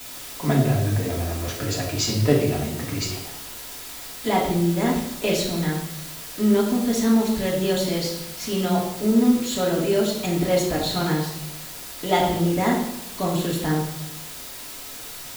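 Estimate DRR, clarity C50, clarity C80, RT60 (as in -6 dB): -4.5 dB, 4.5 dB, 7.0 dB, 0.90 s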